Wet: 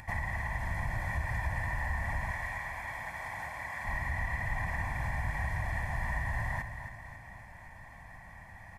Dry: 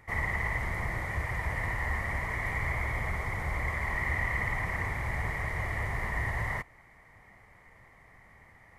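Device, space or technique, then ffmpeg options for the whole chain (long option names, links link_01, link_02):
upward and downward compression: -filter_complex "[0:a]acompressor=mode=upward:threshold=-47dB:ratio=2.5,acompressor=threshold=-34dB:ratio=6,asettb=1/sr,asplit=3[link_01][link_02][link_03];[link_01]atrim=end=2.314[link_04];[link_02]atrim=start=2.31:end=3.85,asetpts=PTS-STARTPTS,afade=type=in:duration=0.004:curve=qsin,afade=type=out:start_time=1.536:duration=0.004:curve=qsin,highpass=frequency=550:poles=1[link_05];[link_03]atrim=start=3.846[link_06];[link_04][link_05]acrossfade=duration=0.004:curve1=hsin:curve2=qsin[link_07];[link_07][link_06]acrossfade=duration=0.004:curve1=qsin:curve2=hsin,aecho=1:1:1.2:0.82,aecho=1:1:271|542|813|1084|1355|1626:0.355|0.188|0.0997|0.0528|0.028|0.0148"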